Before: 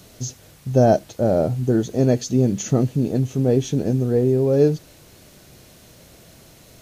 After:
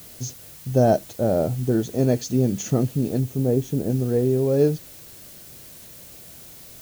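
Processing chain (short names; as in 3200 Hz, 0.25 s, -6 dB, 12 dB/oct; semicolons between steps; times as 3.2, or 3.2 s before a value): 3.2–3.9 bell 3700 Hz -10.5 dB 2.5 oct; added noise blue -42 dBFS; gain -2.5 dB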